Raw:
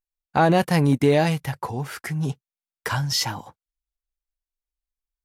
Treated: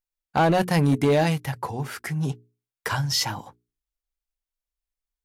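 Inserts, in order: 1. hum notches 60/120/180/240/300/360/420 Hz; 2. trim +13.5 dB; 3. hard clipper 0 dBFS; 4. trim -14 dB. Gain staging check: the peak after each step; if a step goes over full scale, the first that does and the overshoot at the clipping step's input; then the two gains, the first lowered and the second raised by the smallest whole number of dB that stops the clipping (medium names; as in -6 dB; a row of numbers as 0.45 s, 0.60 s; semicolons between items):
-7.0 dBFS, +6.5 dBFS, 0.0 dBFS, -14.0 dBFS; step 2, 6.5 dB; step 2 +6.5 dB, step 4 -7 dB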